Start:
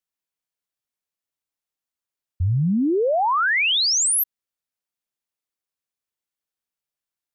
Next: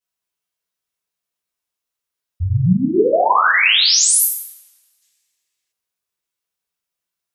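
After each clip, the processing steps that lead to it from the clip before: two-slope reverb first 0.66 s, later 1.7 s, from -28 dB, DRR -9.5 dB; time-frequency box 5.02–5.72 s, 1.6–8.5 kHz +8 dB; trim -4 dB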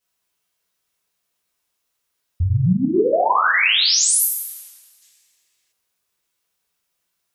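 compression 2:1, threshold -32 dBFS, peak gain reduction 12.5 dB; trim +8.5 dB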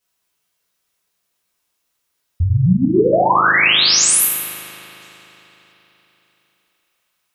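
spring tank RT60 3.9 s, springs 38 ms, chirp 60 ms, DRR 11 dB; trim +3 dB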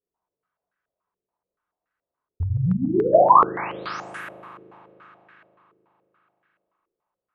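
step-sequenced low-pass 7 Hz 420–1600 Hz; trim -8.5 dB

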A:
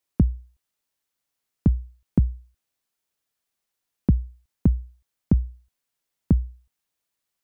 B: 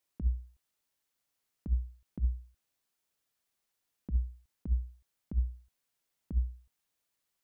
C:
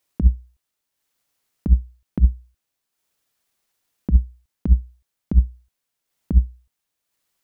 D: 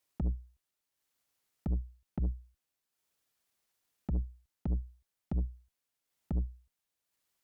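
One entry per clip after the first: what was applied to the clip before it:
compressor with a negative ratio -22 dBFS, ratio -0.5; trim -5.5 dB
transient shaper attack +9 dB, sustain -6 dB; trim +8.5 dB
valve stage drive 22 dB, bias 0.35; trim -5.5 dB

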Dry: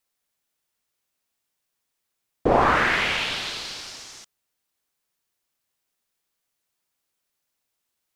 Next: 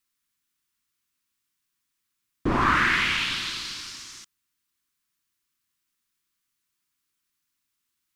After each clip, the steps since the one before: high-order bell 600 Hz -14.5 dB 1.2 oct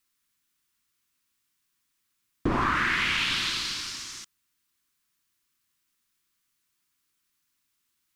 compression 6:1, threshold -25 dBFS, peak gain reduction 8.5 dB; trim +3 dB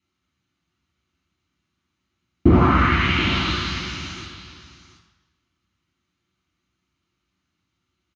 distance through air 88 m; delay 727 ms -13.5 dB; reverberation RT60 1.1 s, pre-delay 3 ms, DRR -6 dB; trim -9 dB

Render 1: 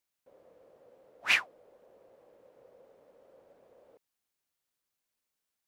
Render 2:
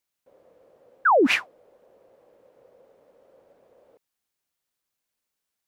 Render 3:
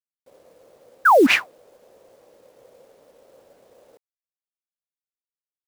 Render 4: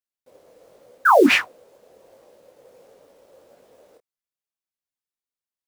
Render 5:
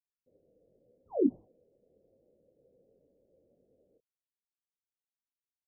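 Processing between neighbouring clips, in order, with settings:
painted sound fall, 1.05–1.27 s, 230–1700 Hz -19 dBFS; trim +2.5 dB
companded quantiser 6-bit; trim +4.5 dB
detune thickener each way 48 cents; trim +4 dB
Gaussian low-pass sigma 21 samples; trim -7 dB

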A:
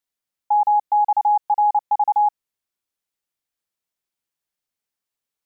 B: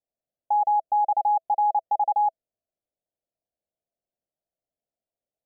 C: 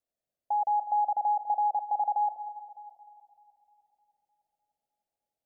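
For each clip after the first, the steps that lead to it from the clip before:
FFT filter 410 Hz 0 dB, 660 Hz +10 dB, 1.2 kHz -27 dB
peak limiter -23 dBFS, peak gain reduction 6.5 dB; two-band feedback delay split 830 Hz, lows 201 ms, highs 304 ms, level -12 dB

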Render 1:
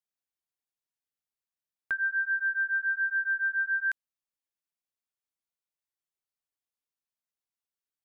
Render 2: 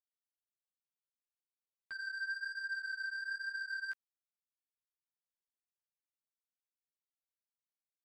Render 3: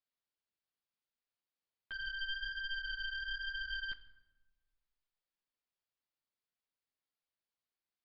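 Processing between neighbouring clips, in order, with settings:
peak limiter -34 dBFS, peak gain reduction 11.5 dB; power-law waveshaper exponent 2; chorus voices 2, 1.1 Hz, delay 13 ms, depth 3 ms; trim +1.5 dB
one-sided wavefolder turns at -43 dBFS; reverberation RT60 1.2 s, pre-delay 13 ms, DRR 12.5 dB; resampled via 11.025 kHz; trim +2.5 dB

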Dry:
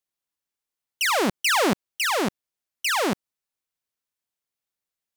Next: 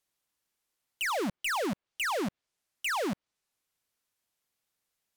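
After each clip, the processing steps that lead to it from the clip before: low-pass that closes with the level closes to 2.5 kHz, closed at -22 dBFS; in parallel at -0.5 dB: peak limiter -26 dBFS, peak gain reduction 11 dB; on the sum: hard clipper -29.5 dBFS, distortion -7 dB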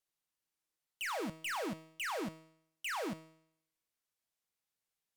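feedback comb 160 Hz, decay 0.7 s, harmonics all, mix 70%; trim +1.5 dB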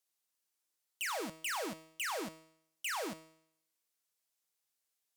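tone controls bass -8 dB, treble +6 dB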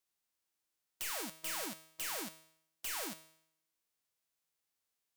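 formants flattened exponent 0.3; trim -2 dB

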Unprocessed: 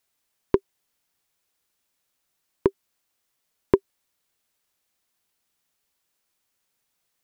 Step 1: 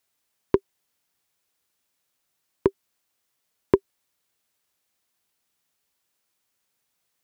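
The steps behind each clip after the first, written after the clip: high-pass 44 Hz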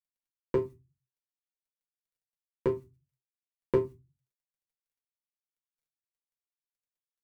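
feedback comb 130 Hz, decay 0.17 s, harmonics all, mix 90%; bit crusher 12-bit; reverberation RT60 0.20 s, pre-delay 4 ms, DRR -3 dB; trim -3 dB

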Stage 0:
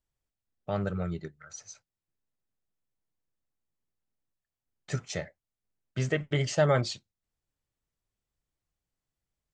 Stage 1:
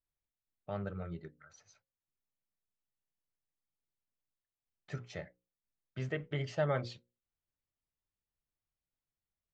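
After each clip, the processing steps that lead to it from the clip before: low-pass 3.5 kHz 12 dB/octave; hum notches 60/120/180/240/300/360/420/480/540 Hz; trim -8 dB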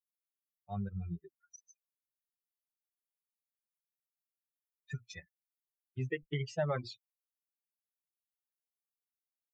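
expander on every frequency bin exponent 3; compression 2:1, threshold -46 dBFS, peak gain reduction 9 dB; trim +10 dB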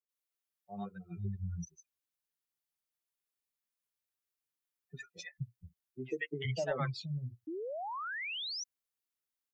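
three bands offset in time mids, highs, lows 90/470 ms, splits 190/680 Hz; painted sound rise, 7.47–8.64 s, 300–6100 Hz -42 dBFS; trim +2.5 dB

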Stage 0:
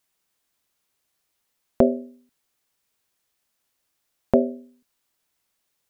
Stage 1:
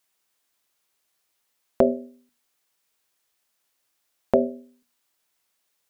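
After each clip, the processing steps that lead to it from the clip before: bass shelf 270 Hz -7.5 dB; hum notches 60/120/180/240 Hz; trim +1.5 dB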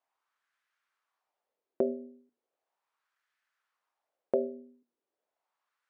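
compression 2:1, threshold -31 dBFS, peak gain reduction 10 dB; LFO band-pass sine 0.37 Hz 330–1600 Hz; trim +3.5 dB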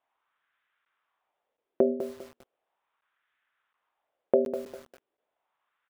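resampled via 8 kHz; crackling interface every 0.72 s, samples 512, zero, from 0.85 s; bit-crushed delay 200 ms, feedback 35%, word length 8-bit, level -9.5 dB; trim +5.5 dB

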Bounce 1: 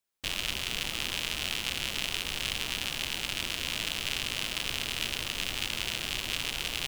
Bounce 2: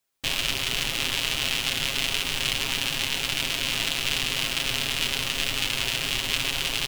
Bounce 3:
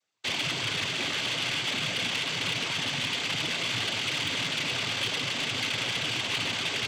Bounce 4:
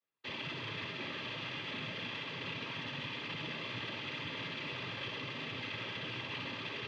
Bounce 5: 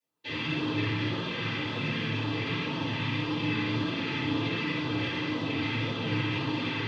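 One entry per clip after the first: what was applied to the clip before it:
comb 7.4 ms; trim +5 dB
treble shelf 5.5 kHz -10 dB; noise-vocoded speech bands 16; saturation -24 dBFS, distortion -16 dB; trim +2 dB
distance through air 280 m; comb of notches 730 Hz; on a send: flutter echo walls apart 10.8 m, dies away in 0.52 s; on the sum: trim -7 dB
LFO notch sine 1.9 Hz 530–2200 Hz; FDN reverb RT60 1.5 s, low-frequency decay 1.55×, high-frequency decay 0.3×, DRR -9 dB; flange 1.5 Hz, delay 3.5 ms, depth 7.2 ms, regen -42%; trim +5 dB

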